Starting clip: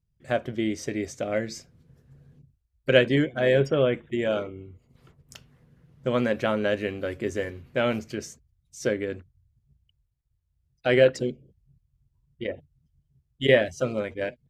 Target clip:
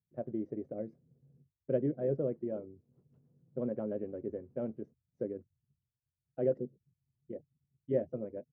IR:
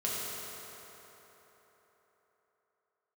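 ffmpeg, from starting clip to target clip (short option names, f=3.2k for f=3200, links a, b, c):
-af "atempo=1.7,asuperpass=centerf=260:order=4:qfactor=0.6,volume=-8.5dB"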